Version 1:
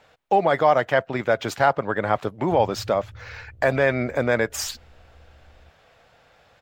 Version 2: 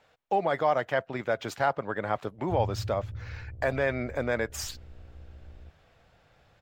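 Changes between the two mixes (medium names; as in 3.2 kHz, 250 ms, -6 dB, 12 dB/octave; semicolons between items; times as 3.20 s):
speech -7.5 dB; background +4.5 dB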